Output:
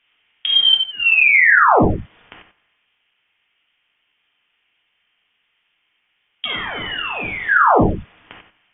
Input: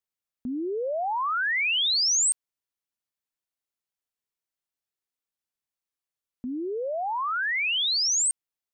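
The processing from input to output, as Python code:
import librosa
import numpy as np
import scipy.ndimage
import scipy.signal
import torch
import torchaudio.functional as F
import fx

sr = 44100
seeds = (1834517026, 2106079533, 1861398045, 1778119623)

p1 = fx.bin_compress(x, sr, power=0.6)
p2 = fx.ellip_highpass(p1, sr, hz=800.0, order=4, stop_db=60, at=(0.73, 1.98), fade=0.02)
p3 = fx.env_lowpass(p2, sr, base_hz=1200.0, full_db=-21.0)
p4 = fx.leveller(p3, sr, passes=2)
p5 = fx.rider(p4, sr, range_db=4, speed_s=0.5)
p6 = p4 + (p5 * librosa.db_to_amplitude(-0.5))
p7 = fx.overflow_wrap(p6, sr, gain_db=18.5, at=(6.45, 7.49))
p8 = p7 + fx.echo_single(p7, sr, ms=92, db=-10.0, dry=0)
p9 = fx.rev_gated(p8, sr, seeds[0], gate_ms=110, shape='flat', drr_db=-2.0)
p10 = fx.freq_invert(p9, sr, carrier_hz=3500)
y = p10 * librosa.db_to_amplitude(-4.0)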